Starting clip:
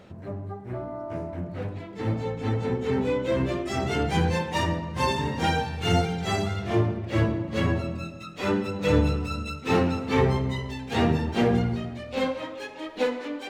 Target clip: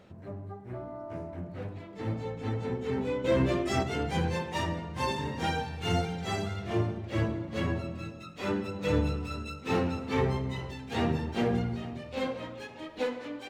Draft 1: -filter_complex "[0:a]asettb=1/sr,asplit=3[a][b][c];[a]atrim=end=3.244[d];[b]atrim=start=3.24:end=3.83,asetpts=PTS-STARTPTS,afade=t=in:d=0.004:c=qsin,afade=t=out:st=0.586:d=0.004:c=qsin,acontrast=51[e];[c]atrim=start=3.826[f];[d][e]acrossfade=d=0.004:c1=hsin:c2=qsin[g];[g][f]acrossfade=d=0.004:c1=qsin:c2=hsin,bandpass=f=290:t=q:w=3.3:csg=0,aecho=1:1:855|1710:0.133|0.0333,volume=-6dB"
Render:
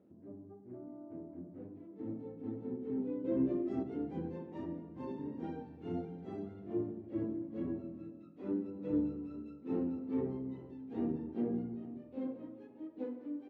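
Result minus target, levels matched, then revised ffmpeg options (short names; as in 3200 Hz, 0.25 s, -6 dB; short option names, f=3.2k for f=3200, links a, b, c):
250 Hz band +4.5 dB
-filter_complex "[0:a]asettb=1/sr,asplit=3[a][b][c];[a]atrim=end=3.244[d];[b]atrim=start=3.24:end=3.83,asetpts=PTS-STARTPTS,afade=t=in:d=0.004:c=qsin,afade=t=out:st=0.586:d=0.004:c=qsin,acontrast=51[e];[c]atrim=start=3.826[f];[d][e]acrossfade=d=0.004:c1=hsin:c2=qsin[g];[g][f]acrossfade=d=0.004:c1=qsin:c2=hsin,aecho=1:1:855|1710:0.133|0.0333,volume=-6dB"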